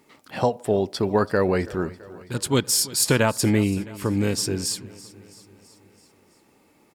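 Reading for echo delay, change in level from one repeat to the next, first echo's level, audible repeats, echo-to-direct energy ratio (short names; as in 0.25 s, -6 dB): 0.331 s, -4.5 dB, -19.5 dB, 4, -17.5 dB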